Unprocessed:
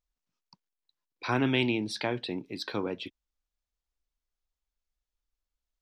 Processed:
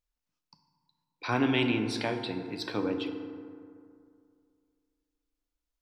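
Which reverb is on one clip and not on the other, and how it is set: FDN reverb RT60 2.3 s, low-frequency decay 1.05×, high-frequency decay 0.4×, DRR 5 dB; gain -1 dB

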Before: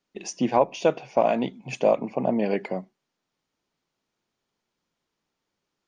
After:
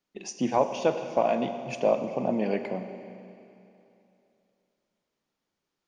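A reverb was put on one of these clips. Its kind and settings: Schroeder reverb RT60 2.8 s, combs from 33 ms, DRR 8 dB; gain -3.5 dB

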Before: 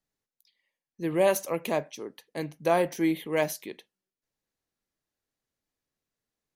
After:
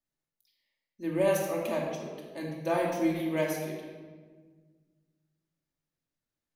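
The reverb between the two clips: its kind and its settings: shoebox room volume 1500 m³, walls mixed, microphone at 2.6 m; gain -8 dB

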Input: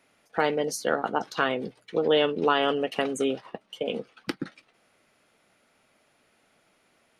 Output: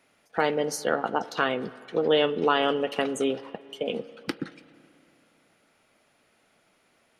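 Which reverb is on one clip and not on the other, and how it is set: spring tank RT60 2.9 s, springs 32/47 ms, chirp 50 ms, DRR 17 dB

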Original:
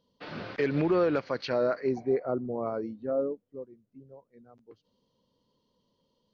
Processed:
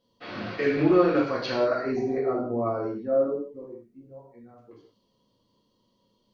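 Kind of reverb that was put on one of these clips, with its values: non-linear reverb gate 0.22 s falling, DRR -6.5 dB; gain -2.5 dB

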